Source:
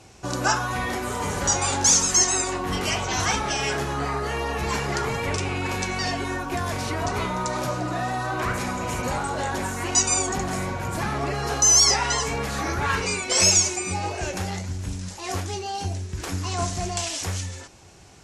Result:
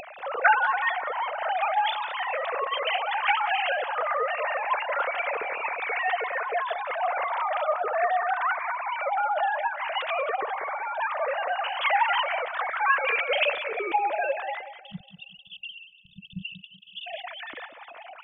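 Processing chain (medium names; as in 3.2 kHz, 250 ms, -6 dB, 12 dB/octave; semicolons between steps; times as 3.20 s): formants replaced by sine waves; upward compressor, threshold -29 dBFS; spectral selection erased 14.81–17.07 s, 210–2600 Hz; tape echo 188 ms, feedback 38%, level -10 dB, low-pass 1.9 kHz; trim -2.5 dB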